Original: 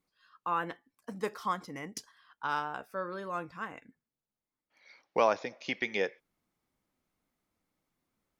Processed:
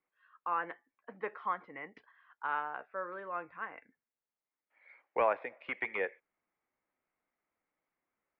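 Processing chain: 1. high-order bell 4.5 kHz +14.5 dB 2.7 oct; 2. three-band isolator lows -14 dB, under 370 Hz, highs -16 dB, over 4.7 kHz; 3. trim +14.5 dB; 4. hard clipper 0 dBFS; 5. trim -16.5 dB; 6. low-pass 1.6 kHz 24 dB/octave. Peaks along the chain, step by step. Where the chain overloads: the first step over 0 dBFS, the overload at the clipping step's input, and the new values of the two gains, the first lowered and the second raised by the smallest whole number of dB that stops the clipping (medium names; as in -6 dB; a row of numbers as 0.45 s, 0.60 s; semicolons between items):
-6.5 dBFS, -7.5 dBFS, +7.0 dBFS, 0.0 dBFS, -16.5 dBFS, -16.5 dBFS; step 3, 7.0 dB; step 3 +7.5 dB, step 5 -9.5 dB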